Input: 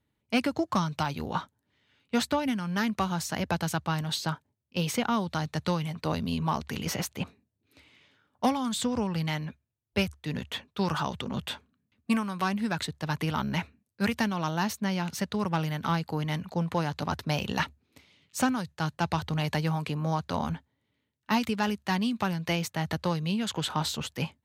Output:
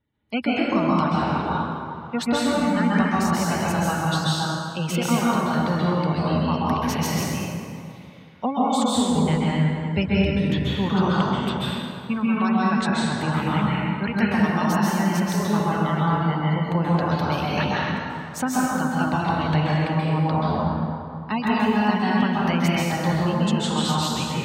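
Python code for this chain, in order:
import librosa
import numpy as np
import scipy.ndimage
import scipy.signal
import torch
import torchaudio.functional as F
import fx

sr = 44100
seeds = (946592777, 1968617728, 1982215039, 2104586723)

y = fx.spec_gate(x, sr, threshold_db=-25, keep='strong')
y = fx.low_shelf(y, sr, hz=200.0, db=8.5, at=(9.16, 10.89))
y = fx.rev_plate(y, sr, seeds[0], rt60_s=2.4, hf_ratio=0.6, predelay_ms=120, drr_db=-7.0)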